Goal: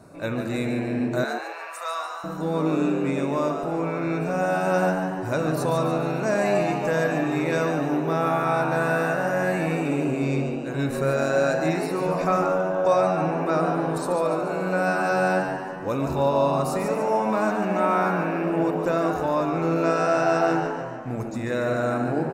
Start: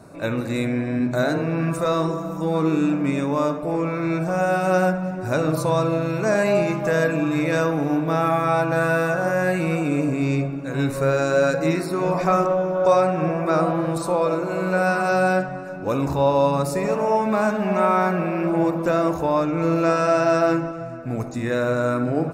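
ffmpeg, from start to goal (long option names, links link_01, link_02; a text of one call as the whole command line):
ffmpeg -i in.wav -filter_complex "[0:a]asettb=1/sr,asplit=3[link_01][link_02][link_03];[link_01]atrim=end=1.244[link_04];[link_02]atrim=start=1.24:end=2.24,asetpts=PTS-STARTPTS,afade=type=in:duration=0.004:curve=qsin,afade=type=out:start_time=0.996:duration=0.004:curve=qsin,highpass=frequency=780:width=0.5412,highpass=frequency=780:width=1.3066[link_05];[link_03]atrim=start=2.236[link_06];[link_04][link_05]acrossfade=duration=0.004:curve1=hsin:curve2=qsin[link_07];[link_07][link_06]acrossfade=duration=0.004:curve1=qsin:curve2=hsin,asplit=6[link_08][link_09][link_10][link_11][link_12][link_13];[link_09]adelay=144,afreqshift=100,volume=-7dB[link_14];[link_10]adelay=288,afreqshift=200,volume=-13.7dB[link_15];[link_11]adelay=432,afreqshift=300,volume=-20.5dB[link_16];[link_12]adelay=576,afreqshift=400,volume=-27.2dB[link_17];[link_13]adelay=720,afreqshift=500,volume=-34dB[link_18];[link_08][link_14][link_15][link_16][link_17][link_18]amix=inputs=6:normalize=0,volume=-3.5dB" out.wav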